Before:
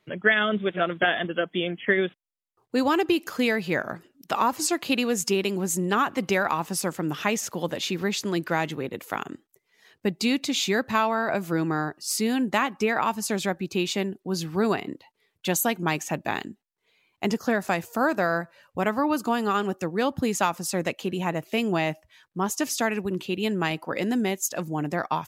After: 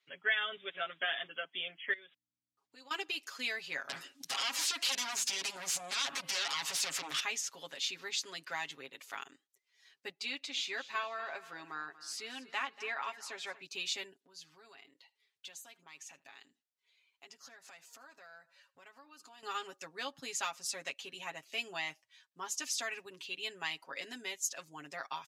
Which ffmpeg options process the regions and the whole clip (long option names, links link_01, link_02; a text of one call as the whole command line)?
ffmpeg -i in.wav -filter_complex "[0:a]asettb=1/sr,asplit=3[link_01][link_02][link_03];[link_01]atrim=end=1.934[link_04];[link_02]atrim=start=1.93:end=2.91,asetpts=PTS-STARTPTS,afade=type=in:duration=0.004:curve=qsin,afade=type=out:start_time=0.976:duration=0.004:curve=qsin,acompressor=threshold=-37dB:ratio=5:attack=3.2:release=140:knee=1:detection=peak,aeval=exprs='val(0)+0.000501*(sin(2*PI*60*n/s)+sin(2*PI*2*60*n/s)/2+sin(2*PI*3*60*n/s)/3+sin(2*PI*4*60*n/s)/4+sin(2*PI*5*60*n/s)/5)':channel_layout=same[link_05];[link_03]atrim=start=2.906[link_06];[link_04][link_05]acrossfade=duration=0.004:curve1=hsin:curve2=qsin[link_07];[link_07][link_06]acrossfade=duration=0.004:curve1=qsin:curve2=hsin,asettb=1/sr,asplit=3[link_08][link_09][link_10];[link_08]atrim=end=3.894[link_11];[link_09]atrim=start=3.89:end=7.2,asetpts=PTS-STARTPTS,afade=type=in:duration=0.004:curve=qsin,afade=type=out:start_time=3.306:duration=0.004:curve=qsin,acompressor=threshold=-34dB:ratio=4:attack=3.2:release=140:knee=1:detection=peak,bandreject=frequency=400:width=7.8,aeval=exprs='0.0841*sin(PI/2*6.31*val(0)/0.0841)':channel_layout=same[link_12];[link_10]atrim=start=7.196[link_13];[link_11][link_12]acrossfade=duration=0.004:curve1=hsin:curve2=qsin[link_14];[link_14][link_13]acrossfade=duration=0.004:curve1=qsin:curve2=hsin,asettb=1/sr,asplit=3[link_15][link_16][link_17];[link_15]atrim=end=10.114[link_18];[link_16]atrim=start=10.11:end=13.62,asetpts=PTS-STARTPTS,afade=type=in:duration=0.004:curve=qsin,afade=type=out:start_time=3.506:duration=0.004:curve=qsin,bass=frequency=250:gain=-7,treble=frequency=4000:gain=-10,aecho=1:1:237|474|711|948:0.15|0.0628|0.0264|0.0111,atrim=end_sample=154791[link_19];[link_17]atrim=start=13.616[link_20];[link_18][link_19]acrossfade=duration=0.004:curve1=hsin:curve2=qsin[link_21];[link_21][link_20]acrossfade=duration=0.004:curve1=qsin:curve2=hsin,asettb=1/sr,asplit=3[link_22][link_23][link_24];[link_22]atrim=end=14.134[link_25];[link_23]atrim=start=14.13:end=19.43,asetpts=PTS-STARTPTS,afade=type=in:duration=0.004:curve=qsin,afade=type=out:start_time=5.296:duration=0.004:curve=qsin,acompressor=threshold=-40dB:ratio=4:attack=3.2:release=140:knee=1:detection=peak,aecho=1:1:79:0.075,atrim=end_sample=233730[link_26];[link_24]atrim=start=19.426[link_27];[link_25][link_26]acrossfade=duration=0.004:curve1=hsin:curve2=qsin[link_28];[link_28][link_27]acrossfade=duration=0.004:curve1=qsin:curve2=hsin,lowpass=4900,aderivative,aecho=1:1:7.3:0.83" out.wav